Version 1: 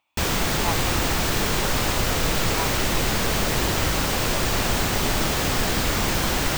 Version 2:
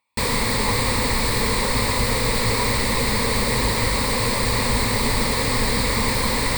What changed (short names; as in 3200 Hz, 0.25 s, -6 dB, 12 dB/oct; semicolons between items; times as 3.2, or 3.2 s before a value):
speech -4.5 dB; master: add ripple EQ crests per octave 0.95, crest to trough 12 dB